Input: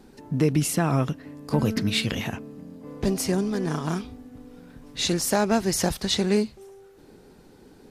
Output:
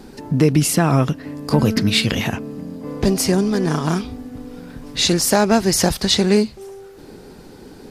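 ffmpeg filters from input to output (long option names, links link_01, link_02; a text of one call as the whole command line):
ffmpeg -i in.wav -filter_complex "[0:a]equalizer=frequency=4800:width=5:gain=3.5,asplit=2[link_01][link_02];[link_02]acompressor=threshold=-33dB:ratio=6,volume=-1.5dB[link_03];[link_01][link_03]amix=inputs=2:normalize=0,volume=5.5dB" out.wav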